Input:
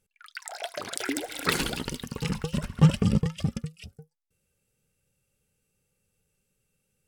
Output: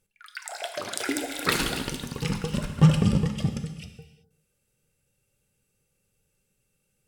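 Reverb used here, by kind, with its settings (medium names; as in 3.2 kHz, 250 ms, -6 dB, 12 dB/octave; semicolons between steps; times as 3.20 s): gated-style reverb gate 410 ms falling, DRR 5.5 dB; trim +1 dB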